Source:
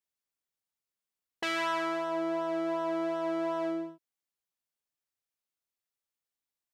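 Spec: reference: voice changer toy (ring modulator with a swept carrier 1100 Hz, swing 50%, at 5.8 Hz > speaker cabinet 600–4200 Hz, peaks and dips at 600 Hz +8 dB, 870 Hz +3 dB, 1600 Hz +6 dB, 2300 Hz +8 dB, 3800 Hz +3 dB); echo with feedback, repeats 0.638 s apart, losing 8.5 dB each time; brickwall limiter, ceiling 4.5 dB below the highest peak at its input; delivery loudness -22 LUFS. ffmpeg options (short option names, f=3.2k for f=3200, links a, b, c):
-af "alimiter=limit=-23.5dB:level=0:latency=1,aecho=1:1:638|1276|1914|2552:0.376|0.143|0.0543|0.0206,aeval=exprs='val(0)*sin(2*PI*1100*n/s+1100*0.5/5.8*sin(2*PI*5.8*n/s))':c=same,highpass=600,equalizer=f=600:t=q:w=4:g=8,equalizer=f=870:t=q:w=4:g=3,equalizer=f=1.6k:t=q:w=4:g=6,equalizer=f=2.3k:t=q:w=4:g=8,equalizer=f=3.8k:t=q:w=4:g=3,lowpass=f=4.2k:w=0.5412,lowpass=f=4.2k:w=1.3066,volume=9.5dB"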